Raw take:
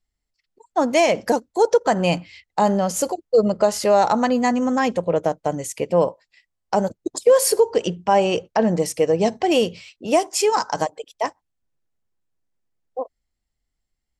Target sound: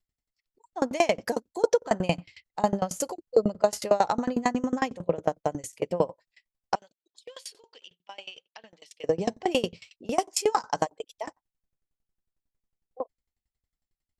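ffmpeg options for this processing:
-filter_complex "[0:a]asettb=1/sr,asplit=3[a][b][c];[a]atrim=end=6.754[d];[b]atrim=start=6.75:end=9.04,asetpts=PTS-STARTPTS,afade=t=in:d=0.004:c=qsin,afade=t=out:st=2.286:d=0.004:c=qsin,bandpass=f=3.3k:t=q:w=3.1:csg=0[e];[c]atrim=start=9.036[f];[d][e]acrossfade=d=0.004:c1=hsin:c2=qsin[g];[g][f]acrossfade=d=0.004:c1=qsin:c2=hsin,aeval=exprs='val(0)*pow(10,-26*if(lt(mod(11*n/s,1),2*abs(11)/1000),1-mod(11*n/s,1)/(2*abs(11)/1000),(mod(11*n/s,1)-2*abs(11)/1000)/(1-2*abs(11)/1000))/20)':c=same"

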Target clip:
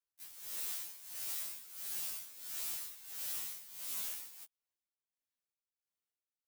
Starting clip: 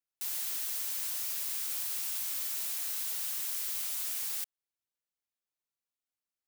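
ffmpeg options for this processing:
-af "acrusher=bits=2:mode=log:mix=0:aa=0.000001,tremolo=f=1.5:d=0.83,afftfilt=real='re*2*eq(mod(b,4),0)':imag='im*2*eq(mod(b,4),0)':win_size=2048:overlap=0.75,volume=-2dB"

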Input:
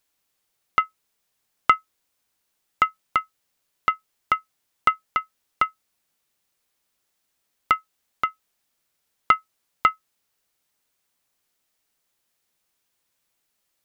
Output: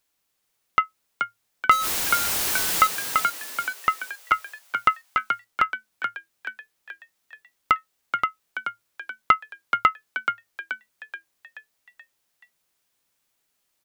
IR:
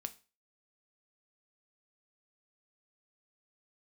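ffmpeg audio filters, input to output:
-filter_complex "[0:a]asettb=1/sr,asplit=3[a][b][c];[a]atrim=end=1.714[d];[b]atrim=start=1.71:end=2.87,asetpts=PTS-STARTPTS,afade=t=in:d=0.004:c=qsin,afade=t=out:st=1.156:d=0.004:c=qsin,aeval=exprs='val(0)+0.5*0.106*sgn(val(0))':c=same[e];[c]atrim=start=2.866[f];[d][e]acrossfade=d=0.004:c1=hsin:c2=qsin[g];[g][f]acrossfade=d=0.004:c1=qsin:c2=hsin,asplit=7[h][i][j][k][l][m][n];[i]adelay=429,afreqshift=110,volume=-6dB[o];[j]adelay=858,afreqshift=220,volume=-12.4dB[p];[k]adelay=1287,afreqshift=330,volume=-18.8dB[q];[l]adelay=1716,afreqshift=440,volume=-25.1dB[r];[m]adelay=2145,afreqshift=550,volume=-31.5dB[s];[n]adelay=2574,afreqshift=660,volume=-37.9dB[t];[h][o][p][q][r][s][t]amix=inputs=7:normalize=0"

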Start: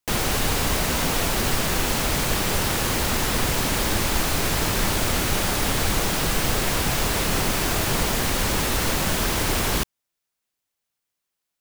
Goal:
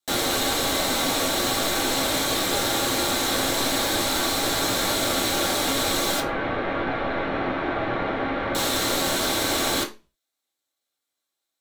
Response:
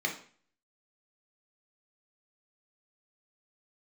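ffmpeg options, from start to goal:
-filter_complex "[0:a]asettb=1/sr,asplit=3[a][b][c];[a]atrim=end=6.204[d];[b]atrim=start=6.2:end=8.55,asetpts=PTS-STARTPTS,afade=t=in:d=0.004:c=qsin,afade=t=out:st=2.346:d=0.004:c=qsin,lowpass=f=2.3k:w=0.5412,lowpass=f=2.3k:w=1.3066[e];[c]atrim=start=8.546[f];[d][e]acrossfade=d=0.004:c1=hsin:c2=qsin[g];[g][f]acrossfade=d=0.004:c1=qsin:c2=hsin[h];[1:a]atrim=start_sample=2205,asetrate=79380,aresample=44100[i];[h][i]afir=irnorm=-1:irlink=0"

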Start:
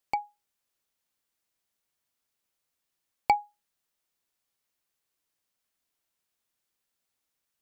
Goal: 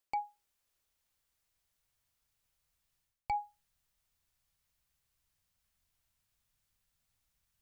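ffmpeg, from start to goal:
-af "asubboost=boost=12:cutoff=99,areverse,acompressor=threshold=-33dB:ratio=12,areverse,volume=1dB"

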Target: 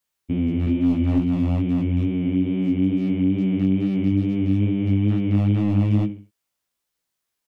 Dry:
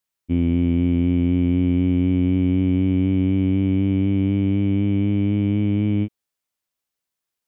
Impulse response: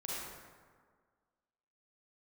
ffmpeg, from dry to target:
-filter_complex "[0:a]asettb=1/sr,asplit=3[a][b][c];[a]atrim=end=2.254[d];[b]atrim=start=2.25:end=4.12,asetpts=PTS-STARTPTS,afade=t=in:d=0.004:c=qsin,afade=t=out:st=1.866:d=0.004:c=qsin,equalizer=f=90:w=5.2:g=-8.5[e];[c]atrim=start=4.116[f];[d][e]acrossfade=d=0.004:c1=hsin:c2=qsin[g];[g][f]acrossfade=d=0.004:c1=qsin:c2=hsin,alimiter=limit=-15.5dB:level=0:latency=1:release=135,asettb=1/sr,asplit=3[h][i][j];[h]atrim=end=0.664[k];[i]atrim=start=0.66:end=1.19,asetpts=PTS-STARTPTS,afade=t=in:d=0.004:c=qsin,afade=t=out:st=0.526:d=0.004:c=qsin,aecho=1:1:3.4:0.74,atrim=end_sample=23373[l];[j]atrim=start=1.186[m];[k][l]acrossfade=d=0.004:c1=hsin:c2=qsin[n];[n][m]acrossfade=d=0.004:c1=qsin:c2=hsin,aecho=1:1:68|136|204:0.251|0.0854|0.029,aeval=exprs='0.168*(abs(mod(val(0)/0.168+3,4)-2)-1)':c=same,flanger=delay=15.5:depth=5.8:speed=2.3,acrossover=split=310|3000[o][p][q];[p]acompressor=threshold=-36dB:ratio=6[r];[o][r][q]amix=inputs=3:normalize=0,volume=6.5dB"

